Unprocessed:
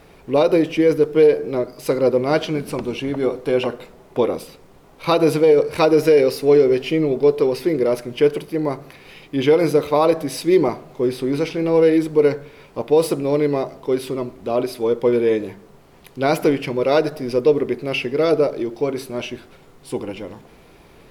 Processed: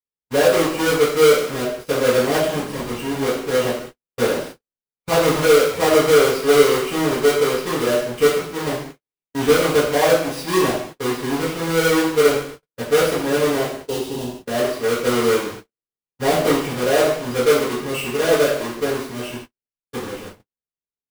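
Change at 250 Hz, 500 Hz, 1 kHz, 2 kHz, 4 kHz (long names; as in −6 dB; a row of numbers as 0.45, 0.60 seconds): −2.5, −0.5, +2.5, +7.0, +6.5 decibels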